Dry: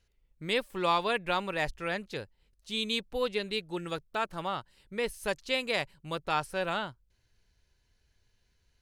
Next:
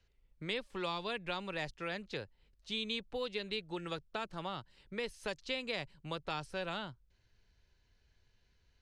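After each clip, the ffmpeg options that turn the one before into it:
ffmpeg -i in.wav -filter_complex "[0:a]lowpass=5300,acrossover=split=120|390|3400[link_01][link_02][link_03][link_04];[link_01]acompressor=threshold=-53dB:ratio=4[link_05];[link_02]acompressor=threshold=-46dB:ratio=4[link_06];[link_03]acompressor=threshold=-40dB:ratio=4[link_07];[link_04]acompressor=threshold=-42dB:ratio=4[link_08];[link_05][link_06][link_07][link_08]amix=inputs=4:normalize=0" out.wav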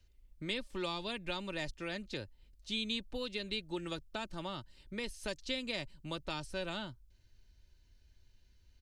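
ffmpeg -i in.wav -af "equalizer=frequency=1100:width=0.31:gain=-9.5,aecho=1:1:3.3:0.39,volume=6dB" out.wav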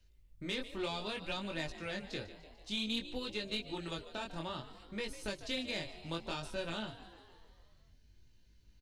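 ffmpeg -i in.wav -filter_complex "[0:a]asplit=8[link_01][link_02][link_03][link_04][link_05][link_06][link_07][link_08];[link_02]adelay=148,afreqshift=65,volume=-15dB[link_09];[link_03]adelay=296,afreqshift=130,volume=-19.2dB[link_10];[link_04]adelay=444,afreqshift=195,volume=-23.3dB[link_11];[link_05]adelay=592,afreqshift=260,volume=-27.5dB[link_12];[link_06]adelay=740,afreqshift=325,volume=-31.6dB[link_13];[link_07]adelay=888,afreqshift=390,volume=-35.8dB[link_14];[link_08]adelay=1036,afreqshift=455,volume=-39.9dB[link_15];[link_01][link_09][link_10][link_11][link_12][link_13][link_14][link_15]amix=inputs=8:normalize=0,flanger=delay=18.5:depth=6.5:speed=0.59,aeval=exprs='(tanh(31.6*val(0)+0.35)-tanh(0.35))/31.6':channel_layout=same,volume=4dB" out.wav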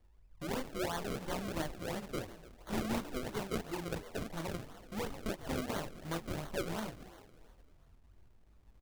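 ffmpeg -i in.wav -af "acrusher=samples=34:mix=1:aa=0.000001:lfo=1:lforange=34:lforate=2.9,volume=1.5dB" out.wav

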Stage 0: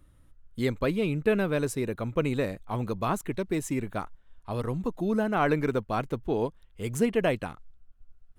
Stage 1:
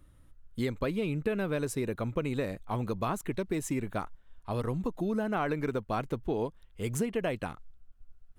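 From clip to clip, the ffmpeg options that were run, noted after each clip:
ffmpeg -i in.wav -af "acompressor=threshold=-27dB:ratio=6" out.wav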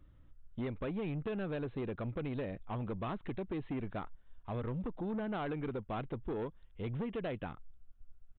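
ffmpeg -i in.wav -af "lowshelf=frequency=480:gain=3.5,aresample=8000,asoftclip=type=tanh:threshold=-27.5dB,aresample=44100,volume=-5dB" out.wav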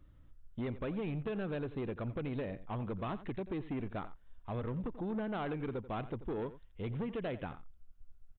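ffmpeg -i in.wav -filter_complex "[0:a]asplit=2[link_01][link_02];[link_02]adelay=87.46,volume=-15dB,highshelf=frequency=4000:gain=-1.97[link_03];[link_01][link_03]amix=inputs=2:normalize=0" out.wav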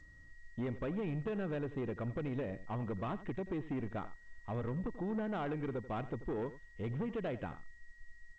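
ffmpeg -i in.wav -af "aeval=exprs='val(0)+0.00141*sin(2*PI*1900*n/s)':channel_layout=same,adynamicsmooth=sensitivity=2:basefreq=3400" -ar 16000 -c:a g722 out.g722

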